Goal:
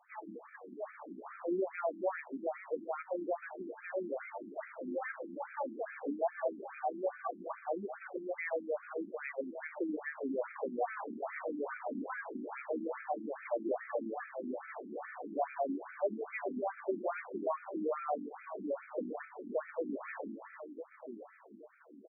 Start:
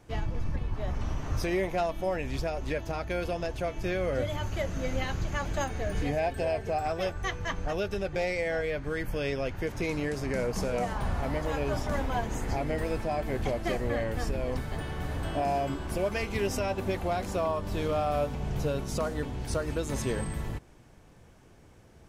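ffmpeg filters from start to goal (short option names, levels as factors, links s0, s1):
-af "aecho=1:1:1021|2042|3063|4084|5105:0.282|0.127|0.0571|0.0257|0.0116,afftfilt=real='re*between(b*sr/1024,250*pow(1800/250,0.5+0.5*sin(2*PI*2.4*pts/sr))/1.41,250*pow(1800/250,0.5+0.5*sin(2*PI*2.4*pts/sr))*1.41)':imag='im*between(b*sr/1024,250*pow(1800/250,0.5+0.5*sin(2*PI*2.4*pts/sr))/1.41,250*pow(1800/250,0.5+0.5*sin(2*PI*2.4*pts/sr))*1.41)':win_size=1024:overlap=0.75,volume=0.891"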